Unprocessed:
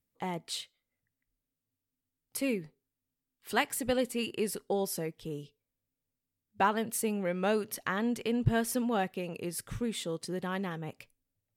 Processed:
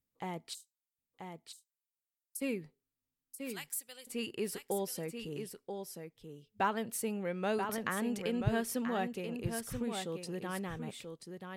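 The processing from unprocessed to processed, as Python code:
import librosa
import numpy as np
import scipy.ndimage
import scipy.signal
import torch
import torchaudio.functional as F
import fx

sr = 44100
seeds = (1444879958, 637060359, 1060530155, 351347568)

y = fx.cheby2_highpass(x, sr, hz=1200.0, order=4, stop_db=80, at=(0.53, 2.4), fade=0.02)
y = fx.differentiator(y, sr, at=(3.5, 4.07))
y = y + 10.0 ** (-6.5 / 20.0) * np.pad(y, (int(984 * sr / 1000.0), 0))[:len(y)]
y = fx.band_squash(y, sr, depth_pct=70, at=(7.69, 8.41))
y = y * 10.0 ** (-4.5 / 20.0)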